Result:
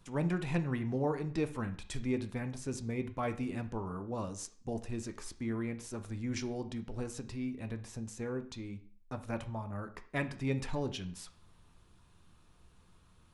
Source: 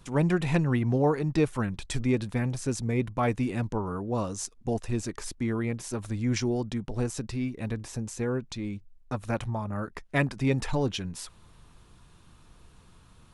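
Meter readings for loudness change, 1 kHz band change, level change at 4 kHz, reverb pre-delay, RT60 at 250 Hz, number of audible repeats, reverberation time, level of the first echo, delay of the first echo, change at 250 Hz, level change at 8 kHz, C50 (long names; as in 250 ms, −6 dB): −8.0 dB, −8.0 dB, −8.0 dB, 9 ms, 0.40 s, no echo audible, 0.45 s, no echo audible, no echo audible, −7.5 dB, −8.5 dB, 13.5 dB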